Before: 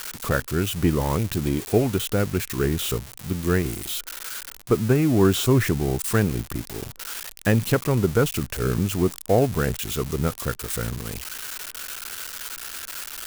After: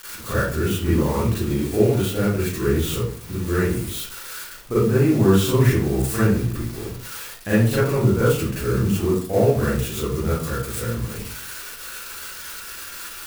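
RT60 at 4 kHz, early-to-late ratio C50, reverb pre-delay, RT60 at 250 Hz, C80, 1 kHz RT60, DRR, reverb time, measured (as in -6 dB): 0.35 s, -0.5 dB, 33 ms, 0.65 s, 5.0 dB, 0.50 s, -10.5 dB, 0.55 s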